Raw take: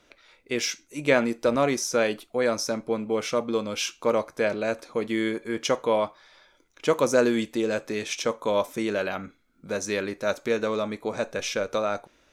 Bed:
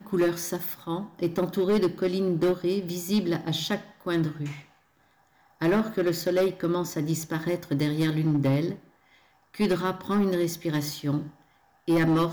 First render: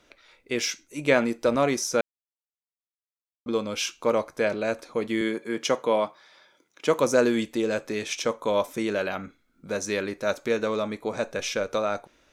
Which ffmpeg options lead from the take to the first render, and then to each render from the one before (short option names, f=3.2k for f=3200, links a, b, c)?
-filter_complex "[0:a]asettb=1/sr,asplit=3[a][b][c];[a]atrim=end=5.214[d];[b]atrim=start=5.21:end=7,asetpts=PTS-STARTPTS,afade=t=in:d=0.004:c=qsin,afade=t=out:st=1.786:d=0.004:c=qsin,highpass=f=130:w=0.5412,highpass=f=130:w=1.3066[e];[c]atrim=start=6.996[f];[d][e]acrossfade=d=0.004:c1=hsin:c2=qsin[g];[g][f]acrossfade=d=0.004:c1=qsin:c2=hsin,asplit=3[h][i][j];[h]atrim=end=2.01,asetpts=PTS-STARTPTS,afade=t=out:st=2.006:d=0.004:c=hsin[k];[i]atrim=start=2.01:end=3.46,asetpts=PTS-STARTPTS,volume=0[l];[j]atrim=start=3.46,asetpts=PTS-STARTPTS,afade=t=in:d=0.004:c=hsin[m];[k][l][m]concat=n=3:v=0:a=1"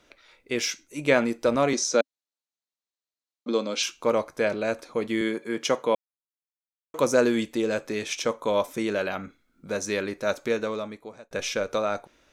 -filter_complex "[0:a]asettb=1/sr,asplit=3[a][b][c];[a]atrim=end=1.734[d];[b]atrim=start=1.73:end=3.83,asetpts=PTS-STARTPTS,afade=t=in:d=0.004:c=qsin,afade=t=out:st=2.096:d=0.004:c=qsin,highpass=f=190:w=0.5412,highpass=f=190:w=1.3066,equalizer=f=270:t=q:w=4:g=4,equalizer=f=580:t=q:w=4:g=4,equalizer=f=4.1k:t=q:w=4:g=8,equalizer=f=6.6k:t=q:w=4:g=4,lowpass=f=8.4k:w=0.5412,lowpass=f=8.4k:w=1.3066[e];[c]atrim=start=3.826[f];[d][e]acrossfade=d=0.004:c1=hsin:c2=qsin[g];[g][f]acrossfade=d=0.004:c1=qsin:c2=hsin,asplit=4[h][i][j][k];[h]atrim=end=5.95,asetpts=PTS-STARTPTS,afade=t=out:st=5.946:d=0.004:c=hsin[l];[i]atrim=start=5.95:end=6.94,asetpts=PTS-STARTPTS,volume=0[m];[j]atrim=start=6.94:end=11.31,asetpts=PTS-STARTPTS,afade=t=in:d=0.004:c=hsin,afade=t=out:st=3.52:d=0.85[n];[k]atrim=start=11.31,asetpts=PTS-STARTPTS,afade=t=in:d=0.004:c=hsin[o];[l][m][n][o]concat=n=4:v=0:a=1"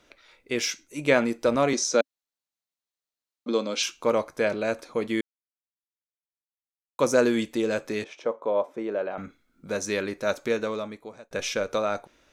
-filter_complex "[0:a]asettb=1/sr,asplit=3[a][b][c];[a]atrim=end=8.044[d];[b]atrim=start=8.04:end=9.18,asetpts=PTS-STARTPTS,afade=t=in:d=0.004:c=qsin,afade=t=out:st=1.136:d=0.004:c=qsin,bandpass=f=570:t=q:w=0.99[e];[c]atrim=start=9.176[f];[d][e]acrossfade=d=0.004:c1=hsin:c2=qsin[g];[g][f]acrossfade=d=0.004:c1=qsin:c2=hsin,asplit=3[h][i][j];[h]atrim=end=5.21,asetpts=PTS-STARTPTS,afade=t=out:st=5.206:d=0.004:c=hsin[k];[i]atrim=start=5.21:end=6.99,asetpts=PTS-STARTPTS,volume=0[l];[j]atrim=start=6.99,asetpts=PTS-STARTPTS,afade=t=in:d=0.004:c=hsin[m];[k][l][m]concat=n=3:v=0:a=1"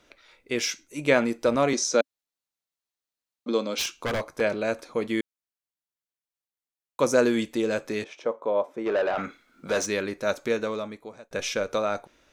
-filter_complex "[0:a]asettb=1/sr,asplit=3[a][b][c];[a]atrim=end=3.724[d];[b]atrim=start=3.72:end=4.41,asetpts=PTS-STARTPTS,afade=t=in:d=0.004:c=qsin,afade=t=out:st=0.686:d=0.004:c=qsin,aeval=exprs='0.0841*(abs(mod(val(0)/0.0841+3,4)-2)-1)':c=same[e];[c]atrim=start=4.406[f];[d][e]acrossfade=d=0.004:c1=hsin:c2=qsin[g];[g][f]acrossfade=d=0.004:c1=qsin:c2=hsin,asplit=3[h][i][j];[h]afade=t=out:st=8.85:d=0.02[k];[i]asplit=2[l][m];[m]highpass=f=720:p=1,volume=19dB,asoftclip=type=tanh:threshold=-16.5dB[n];[l][n]amix=inputs=2:normalize=0,lowpass=f=4.2k:p=1,volume=-6dB,afade=t=in:st=8.85:d=0.02,afade=t=out:st=9.85:d=0.02[o];[j]afade=t=in:st=9.85:d=0.02[p];[k][o][p]amix=inputs=3:normalize=0"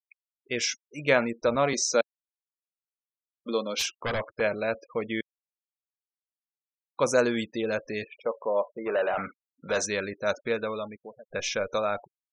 -af "afftfilt=real='re*gte(hypot(re,im),0.0141)':imag='im*gte(hypot(re,im),0.0141)':win_size=1024:overlap=0.75,equalizer=f=300:t=o:w=1:g=-6.5"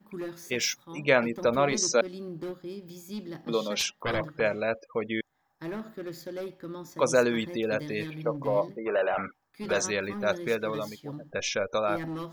-filter_complex "[1:a]volume=-13dB[a];[0:a][a]amix=inputs=2:normalize=0"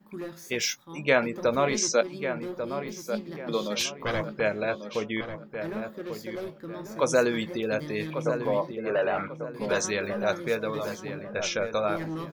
-filter_complex "[0:a]asplit=2[a][b];[b]adelay=19,volume=-12.5dB[c];[a][c]amix=inputs=2:normalize=0,asplit=2[d][e];[e]adelay=1143,lowpass=f=2.1k:p=1,volume=-8dB,asplit=2[f][g];[g]adelay=1143,lowpass=f=2.1k:p=1,volume=0.36,asplit=2[h][i];[i]adelay=1143,lowpass=f=2.1k:p=1,volume=0.36,asplit=2[j][k];[k]adelay=1143,lowpass=f=2.1k:p=1,volume=0.36[l];[f][h][j][l]amix=inputs=4:normalize=0[m];[d][m]amix=inputs=2:normalize=0"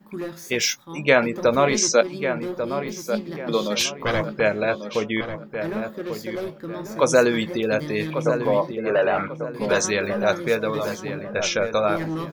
-af "volume=6dB,alimiter=limit=-3dB:level=0:latency=1"